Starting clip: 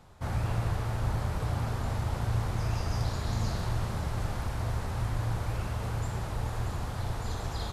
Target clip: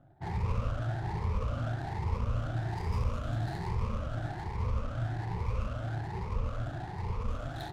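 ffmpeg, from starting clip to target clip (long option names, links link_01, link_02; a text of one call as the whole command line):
ffmpeg -i in.wav -af "afftfilt=real='re*pow(10,19/40*sin(2*PI*(0.84*log(max(b,1)*sr/1024/100)/log(2)-(1.2)*(pts-256)/sr)))':imag='im*pow(10,19/40*sin(2*PI*(0.84*log(max(b,1)*sr/1024/100)/log(2)-(1.2)*(pts-256)/sr)))':win_size=1024:overlap=0.75,adynamicsmooth=sensitivity=8:basefreq=640,volume=-5.5dB" out.wav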